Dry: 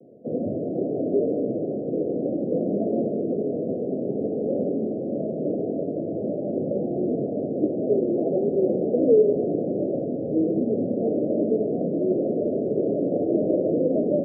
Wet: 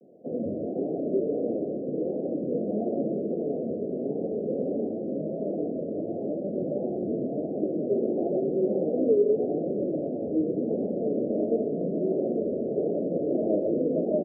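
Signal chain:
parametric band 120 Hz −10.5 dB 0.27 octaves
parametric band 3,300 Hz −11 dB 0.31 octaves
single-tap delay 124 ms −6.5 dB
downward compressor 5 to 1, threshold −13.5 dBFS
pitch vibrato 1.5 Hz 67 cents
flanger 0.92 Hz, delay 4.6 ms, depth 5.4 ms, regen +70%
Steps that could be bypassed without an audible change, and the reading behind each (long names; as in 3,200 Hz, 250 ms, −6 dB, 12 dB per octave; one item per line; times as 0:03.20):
parametric band 3,300 Hz: nothing at its input above 760 Hz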